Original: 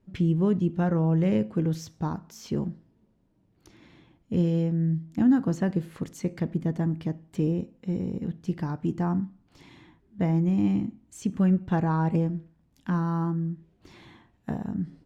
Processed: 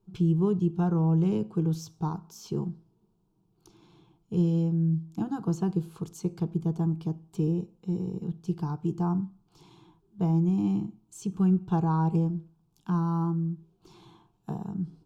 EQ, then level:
phaser with its sweep stopped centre 380 Hz, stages 8
0.0 dB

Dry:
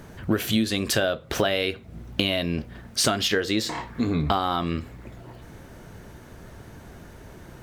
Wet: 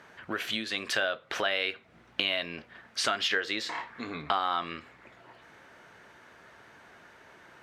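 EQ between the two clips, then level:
resonant band-pass 1,800 Hz, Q 0.84
0.0 dB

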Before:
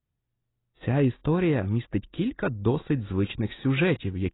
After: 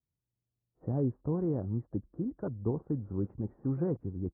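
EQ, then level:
high-pass filter 53 Hz
Bessel low-pass filter 670 Hz, order 8
−7.0 dB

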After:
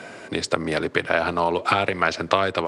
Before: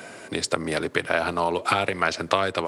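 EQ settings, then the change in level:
high-frequency loss of the air 62 metres
+2.5 dB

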